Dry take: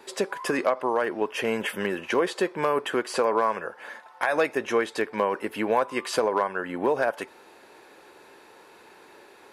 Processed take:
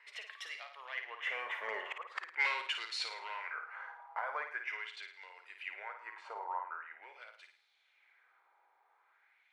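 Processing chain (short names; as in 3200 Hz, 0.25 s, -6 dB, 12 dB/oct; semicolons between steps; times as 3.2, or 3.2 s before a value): Doppler pass-by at 2.19, 30 m/s, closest 2.9 m; Bessel high-pass 680 Hz, order 4; bell 2100 Hz +7.5 dB 0.33 oct; flipped gate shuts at -23 dBFS, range -35 dB; high shelf 6600 Hz -6 dB; in parallel at -0.5 dB: compressor, threshold -57 dBFS, peak gain reduction 22 dB; on the sum: soft clip -36.5 dBFS, distortion -10 dB; LFO band-pass sine 0.43 Hz 910–4100 Hz; on a send: flutter echo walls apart 9.3 m, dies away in 0.46 s; on the sum: gain +17 dB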